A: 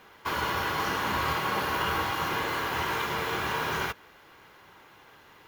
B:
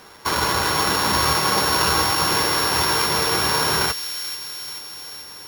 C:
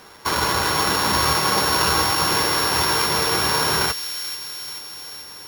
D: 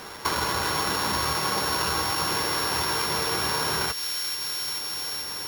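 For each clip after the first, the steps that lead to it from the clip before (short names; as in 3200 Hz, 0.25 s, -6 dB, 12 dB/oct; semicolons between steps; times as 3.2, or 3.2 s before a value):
sample sorter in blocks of 8 samples; thin delay 0.435 s, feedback 61%, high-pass 2700 Hz, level -8.5 dB; gain +8.5 dB
nothing audible
compressor 4:1, threshold -31 dBFS, peak gain reduction 13 dB; gain +5.5 dB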